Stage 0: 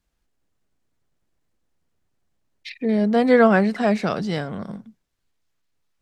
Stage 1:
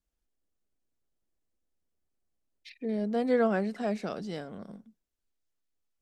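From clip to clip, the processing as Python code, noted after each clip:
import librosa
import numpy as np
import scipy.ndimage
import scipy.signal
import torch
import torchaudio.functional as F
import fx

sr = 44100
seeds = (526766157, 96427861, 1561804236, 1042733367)

y = fx.graphic_eq_10(x, sr, hz=(125, 1000, 2000, 4000), db=(-10, -5, -5, -3))
y = F.gain(torch.from_numpy(y), -8.5).numpy()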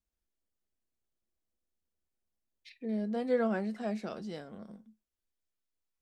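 y = fx.comb_fb(x, sr, f0_hz=72.0, decay_s=0.16, harmonics='odd', damping=0.0, mix_pct=60)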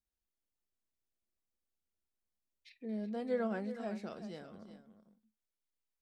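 y = x + 10.0 ** (-12.0 / 20.0) * np.pad(x, (int(373 * sr / 1000.0), 0))[:len(x)]
y = F.gain(torch.from_numpy(y), -5.5).numpy()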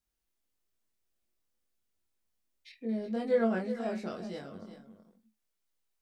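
y = fx.doubler(x, sr, ms=22.0, db=-2)
y = F.gain(torch.from_numpy(y), 4.0).numpy()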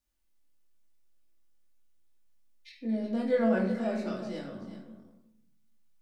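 y = fx.room_shoebox(x, sr, seeds[0], volume_m3=2100.0, walls='furnished', distance_m=2.5)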